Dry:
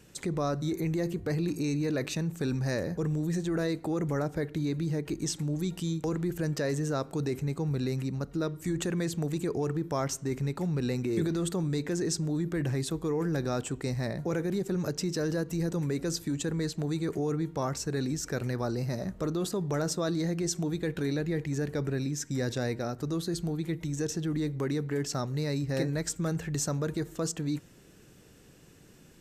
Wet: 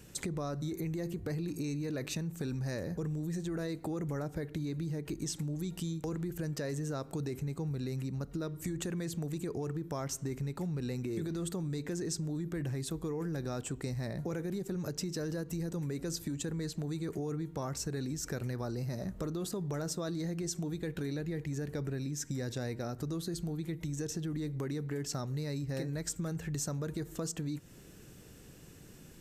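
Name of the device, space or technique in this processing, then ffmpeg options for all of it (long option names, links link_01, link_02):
ASMR close-microphone chain: -af "lowshelf=frequency=170:gain=5,acompressor=threshold=-35dB:ratio=4,highshelf=frequency=9100:gain=7"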